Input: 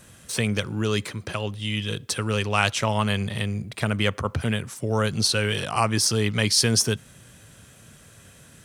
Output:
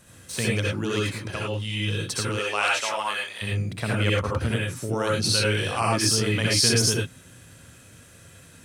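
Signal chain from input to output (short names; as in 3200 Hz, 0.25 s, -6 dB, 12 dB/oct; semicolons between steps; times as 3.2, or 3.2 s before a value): 2.27–3.41 HPF 380 Hz -> 1000 Hz 12 dB/oct; reverb, pre-delay 57 ms, DRR -3.5 dB; gain -4.5 dB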